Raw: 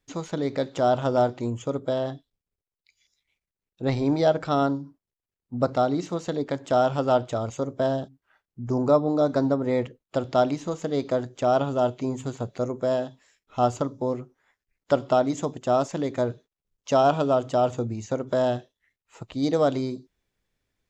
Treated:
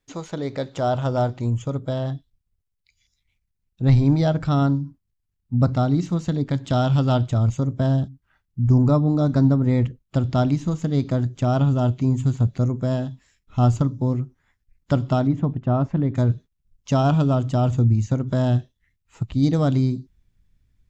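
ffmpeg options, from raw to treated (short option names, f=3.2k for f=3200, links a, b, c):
-filter_complex "[0:a]asettb=1/sr,asplit=3[a][b][c];[a]atrim=end=6.534[d];[b]atrim=start=6.53:end=7.27,asetpts=PTS-STARTPTS,afade=t=in:d=0.004:c=qsin,afade=t=out:st=0.736:d=0.004:c=qsin,equalizer=f=3.7k:w=1.5:g=7[e];[c]atrim=start=7.266[f];[d][e]acrossfade=d=0.004:c1=hsin:c2=qsin[g];[g][f]acrossfade=d=0.004:c1=qsin:c2=hsin,asettb=1/sr,asplit=3[h][i][j];[h]atrim=end=15.274[k];[i]atrim=start=15.27:end=16.15,asetpts=PTS-STARTPTS,afade=t=in:d=0.004:c=qsin,afade=t=out:st=0.876:d=0.004:c=qsin,lowpass=1.8k[l];[j]atrim=start=16.146[m];[k][l]acrossfade=d=0.004:c1=hsin:c2=qsin[n];[n][m]acrossfade=d=0.004:c1=qsin:c2=hsin,asubboost=boost=10.5:cutoff=150"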